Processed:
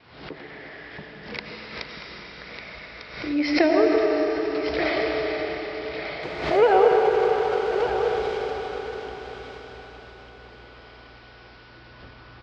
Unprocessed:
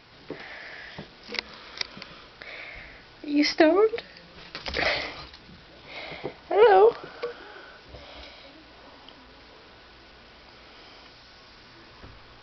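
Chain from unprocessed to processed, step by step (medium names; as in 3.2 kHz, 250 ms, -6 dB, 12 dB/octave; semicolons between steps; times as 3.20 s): 6.23–8.38 s: one-bit delta coder 64 kbps, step -31 dBFS; gate with hold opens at -44 dBFS; high-pass 42 Hz; distance through air 190 m; delay 1199 ms -8.5 dB; reverberation RT60 5.2 s, pre-delay 55 ms, DRR -1 dB; swell ahead of each attack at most 75 dB/s; trim -1 dB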